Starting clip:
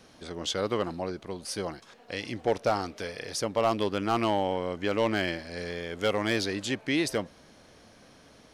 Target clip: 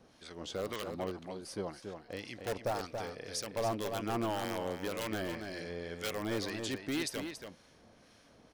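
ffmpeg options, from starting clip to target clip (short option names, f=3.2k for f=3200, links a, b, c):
-filter_complex "[0:a]asplit=2[a][b];[b]aeval=exprs='(mod(8.91*val(0)+1,2)-1)/8.91':c=same,volume=-3.5dB[c];[a][c]amix=inputs=2:normalize=0,acrossover=split=1200[d][e];[d]aeval=exprs='val(0)*(1-0.7/2+0.7/2*cos(2*PI*1.9*n/s))':c=same[f];[e]aeval=exprs='val(0)*(1-0.7/2-0.7/2*cos(2*PI*1.9*n/s))':c=same[g];[f][g]amix=inputs=2:normalize=0,asplit=2[h][i];[i]adelay=279.9,volume=-6dB,highshelf=f=4k:g=-6.3[j];[h][j]amix=inputs=2:normalize=0,volume=-8.5dB"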